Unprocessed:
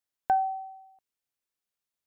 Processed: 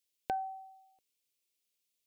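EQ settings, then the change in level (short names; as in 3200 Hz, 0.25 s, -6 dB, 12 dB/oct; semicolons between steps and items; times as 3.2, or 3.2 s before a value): low shelf 400 Hz -9.5 dB; band shelf 1100 Hz -15.5 dB; +6.5 dB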